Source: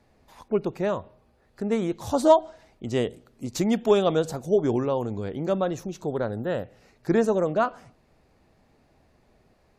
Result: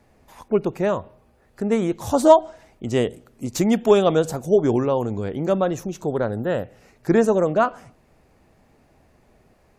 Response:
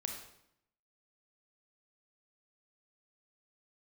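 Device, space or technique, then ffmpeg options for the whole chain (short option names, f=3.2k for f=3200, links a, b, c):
exciter from parts: -filter_complex "[0:a]asplit=2[a][b];[b]highpass=f=3.9k:w=0.5412,highpass=f=3.9k:w=1.3066,asoftclip=type=tanh:threshold=-31.5dB,volume=-6dB[c];[a][c]amix=inputs=2:normalize=0,volume=4.5dB"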